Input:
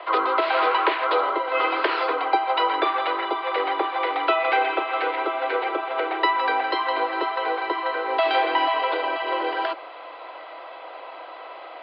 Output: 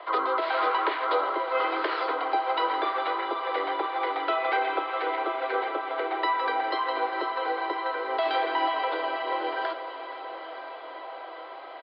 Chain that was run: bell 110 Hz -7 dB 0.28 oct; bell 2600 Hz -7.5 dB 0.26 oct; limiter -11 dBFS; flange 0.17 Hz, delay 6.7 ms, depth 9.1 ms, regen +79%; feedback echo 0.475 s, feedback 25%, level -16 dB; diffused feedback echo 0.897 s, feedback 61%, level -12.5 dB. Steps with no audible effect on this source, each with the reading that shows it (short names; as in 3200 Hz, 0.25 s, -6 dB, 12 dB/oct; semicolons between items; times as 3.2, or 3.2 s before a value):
bell 110 Hz: input band starts at 270 Hz